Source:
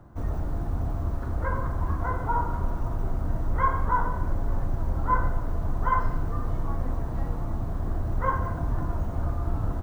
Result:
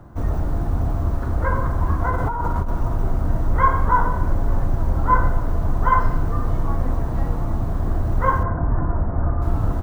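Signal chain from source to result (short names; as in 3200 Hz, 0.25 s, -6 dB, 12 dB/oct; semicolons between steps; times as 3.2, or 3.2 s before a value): 2.1–2.69 negative-ratio compressor -28 dBFS, ratio -1; 8.43–9.42 steep low-pass 1900 Hz 36 dB/oct; gain +7 dB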